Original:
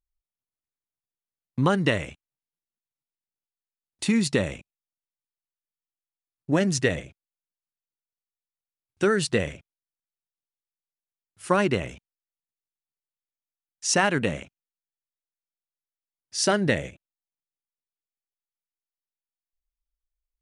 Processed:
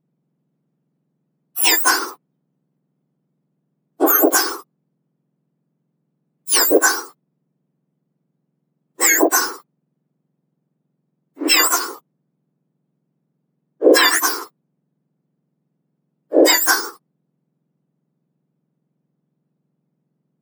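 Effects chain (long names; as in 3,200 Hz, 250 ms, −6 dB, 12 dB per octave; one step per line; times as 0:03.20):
frequency axis turned over on the octave scale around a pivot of 1,700 Hz
boost into a limiter +14.5 dB
level −1 dB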